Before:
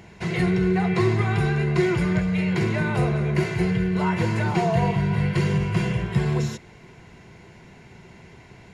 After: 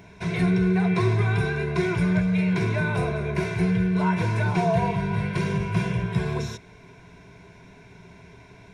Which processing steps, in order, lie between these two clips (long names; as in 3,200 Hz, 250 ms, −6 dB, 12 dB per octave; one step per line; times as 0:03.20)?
EQ curve with evenly spaced ripples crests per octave 1.6, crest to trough 9 dB
level −2.5 dB